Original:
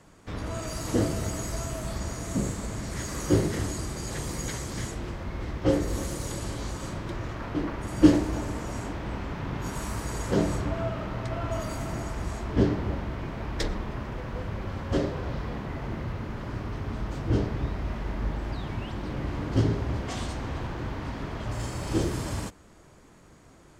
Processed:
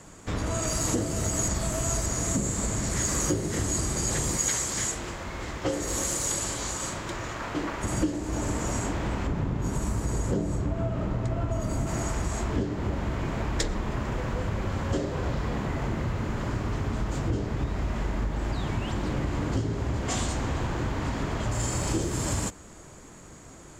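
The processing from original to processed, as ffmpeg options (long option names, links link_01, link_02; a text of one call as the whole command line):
ffmpeg -i in.wav -filter_complex "[0:a]asettb=1/sr,asplit=3[link_01][link_02][link_03];[link_01]atrim=end=4.374[link_04];[link_02]atrim=start=4.37:end=7.83,asetpts=PTS-STARTPTS,afade=type=in:duration=0.004:curve=qsin,afade=type=out:start_time=3.456:duration=0.004:curve=qsin,lowshelf=frequency=420:gain=-10.5[link_05];[link_03]atrim=start=7.826[link_06];[link_04][link_05]acrossfade=duration=0.004:curve1=hsin:curve2=qsin[link_07];[link_07][link_06]acrossfade=duration=0.004:curve1=qsin:curve2=hsin,asettb=1/sr,asplit=3[link_08][link_09][link_10];[link_08]atrim=end=9.274[link_11];[link_09]atrim=start=9.27:end=11.87,asetpts=PTS-STARTPTS,afade=type=in:duration=0.004:curve=qsin,afade=type=out:start_time=2.596:duration=0.004:curve=qsin,tiltshelf=frequency=690:gain=5.5[link_12];[link_10]atrim=start=11.866[link_13];[link_11][link_12]acrossfade=duration=0.004:curve1=hsin:curve2=qsin[link_14];[link_14][link_13]acrossfade=duration=0.004:curve1=qsin:curve2=hsin,asplit=3[link_15][link_16][link_17];[link_15]atrim=end=1.482[link_18];[link_16]atrim=start=1.478:end=2.062,asetpts=PTS-STARTPTS,areverse[link_19];[link_17]atrim=start=2.058[link_20];[link_18][link_19]acrossfade=duration=0.004:curve1=hsin:curve2=hsin[link_21];[link_21][link_20]acrossfade=duration=0.004:curve1=hsin:curve2=hsin,acompressor=threshold=-30dB:ratio=10,equalizer=frequency=7200:width_type=o:width=0.32:gain=11.5,volume=6dB" out.wav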